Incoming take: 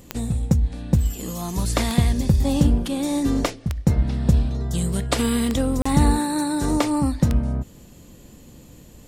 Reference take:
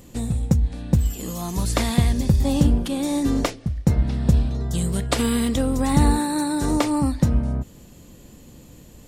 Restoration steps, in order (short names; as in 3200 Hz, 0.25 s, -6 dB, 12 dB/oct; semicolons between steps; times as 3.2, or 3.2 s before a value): de-click; interpolate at 5.82, 35 ms